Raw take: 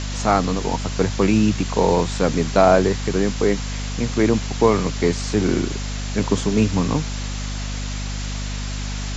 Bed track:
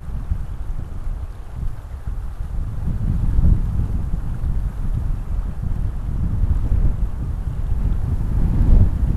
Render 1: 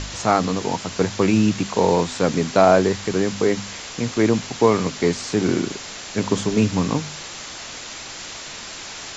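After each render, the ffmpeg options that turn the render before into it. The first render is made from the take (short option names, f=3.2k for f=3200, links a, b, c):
-af "bandreject=f=50:t=h:w=4,bandreject=f=100:t=h:w=4,bandreject=f=150:t=h:w=4,bandreject=f=200:t=h:w=4,bandreject=f=250:t=h:w=4"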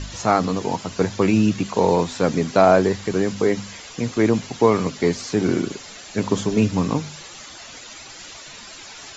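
-af "afftdn=nr=10:nf=-35"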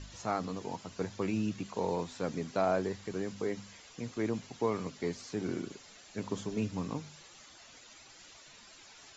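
-af "volume=-15.5dB"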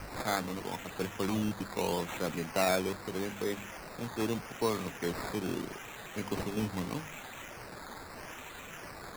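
-filter_complex "[0:a]acrossover=split=330[a][b];[b]crystalizer=i=4:c=0[c];[a][c]amix=inputs=2:normalize=0,acrusher=samples=12:mix=1:aa=0.000001:lfo=1:lforange=7.2:lforate=0.79"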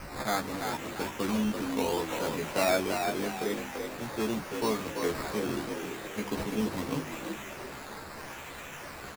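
-filter_complex "[0:a]asplit=2[a][b];[b]adelay=14,volume=-3dB[c];[a][c]amix=inputs=2:normalize=0,asplit=6[d][e][f][g][h][i];[e]adelay=339,afreqshift=53,volume=-5.5dB[j];[f]adelay=678,afreqshift=106,volume=-13.5dB[k];[g]adelay=1017,afreqshift=159,volume=-21.4dB[l];[h]adelay=1356,afreqshift=212,volume=-29.4dB[m];[i]adelay=1695,afreqshift=265,volume=-37.3dB[n];[d][j][k][l][m][n]amix=inputs=6:normalize=0"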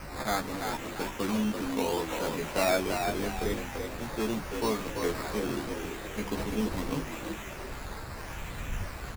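-filter_complex "[1:a]volume=-23dB[a];[0:a][a]amix=inputs=2:normalize=0"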